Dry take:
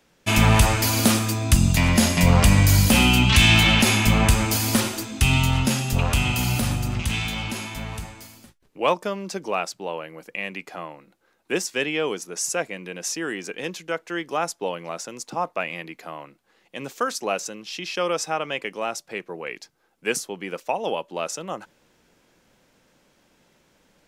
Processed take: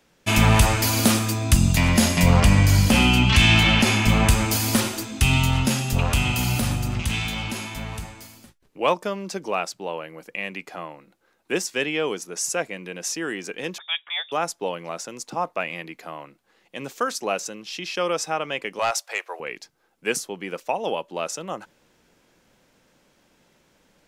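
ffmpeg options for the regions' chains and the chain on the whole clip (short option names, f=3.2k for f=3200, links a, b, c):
-filter_complex "[0:a]asettb=1/sr,asplit=3[a][b][c];[a]atrim=end=2.404[d];[b]atrim=start=2.4:end=4.09,asetpts=PTS-STARTPTS,afade=t=in:d=0.004:c=qsin,afade=t=out:st=1.686:d=0.004:c=qsin,highshelf=f=9.2k:g=-11,bandreject=f=3.8k:w=21[e];[c]atrim=start=4.086[f];[d][e]acrossfade=d=0.004:c1=hsin:c2=qsin[g];[g][f]acrossfade=d=0.004:c1=qsin:c2=hsin,asettb=1/sr,asplit=3[h][i][j];[h]atrim=end=13.784[k];[i]atrim=start=13.78:end=14.32,asetpts=PTS-STARTPTS,afade=t=in:d=0.004:c=qsin,afade=t=out:st=0.536:d=0.004:c=qsin,lowpass=f=3.2k:t=q:w=0.5098,lowpass=f=3.2k:t=q:w=0.6013,lowpass=f=3.2k:t=q:w=0.9,lowpass=f=3.2k:t=q:w=2.563,afreqshift=-3800,equalizer=f=170:t=o:w=1.2:g=-13.5[l];[j]atrim=start=14.316[m];[k][l]acrossfade=d=0.004:c1=hsin:c2=qsin[n];[n][m]acrossfade=d=0.004:c1=qsin:c2=hsin,asettb=1/sr,asplit=3[o][p][q];[o]atrim=end=18.794[r];[p]atrim=start=18.79:end=19.4,asetpts=PTS-STARTPTS,afade=t=in:d=0.004:c=qsin,afade=t=out:st=0.606:d=0.004:c=qsin,highpass=f=620:w=0.5412,highpass=f=620:w=1.3066,aeval=exprs='0.168*sin(PI/2*1.58*val(0)/0.168)':c=same[s];[q]atrim=start=19.396[t];[r][s]acrossfade=d=0.004:c1=hsin:c2=qsin[u];[u][t]acrossfade=d=0.004:c1=qsin:c2=hsin"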